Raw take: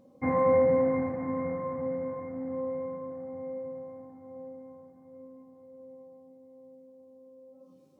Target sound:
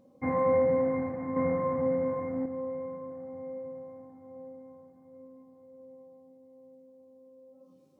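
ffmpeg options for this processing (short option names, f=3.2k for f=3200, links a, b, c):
-filter_complex "[0:a]asettb=1/sr,asplit=3[a][b][c];[a]atrim=end=1.364[d];[b]atrim=start=1.36:end=2.46,asetpts=PTS-STARTPTS,afade=t=in:d=0.004:c=qsin,afade=t=out:st=1.096:d=0.004:c=qsin,acontrast=67[e];[c]atrim=start=2.456[f];[d][e]acrossfade=d=0.004:c1=hsin:c2=qsin[g];[g][f]acrossfade=d=0.004:c1=qsin:c2=hsin,volume=-2dB"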